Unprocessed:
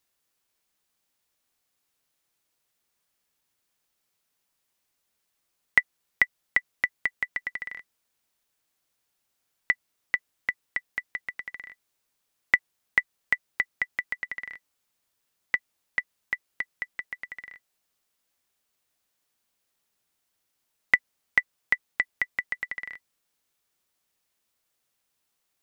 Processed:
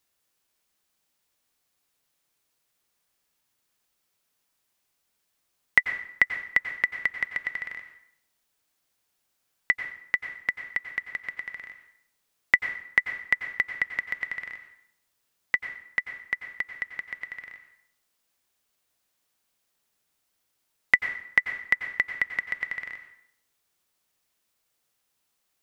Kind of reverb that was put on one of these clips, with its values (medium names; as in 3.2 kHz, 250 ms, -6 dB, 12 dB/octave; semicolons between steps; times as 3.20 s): plate-style reverb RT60 0.7 s, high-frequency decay 0.8×, pre-delay 80 ms, DRR 8 dB; trim +1 dB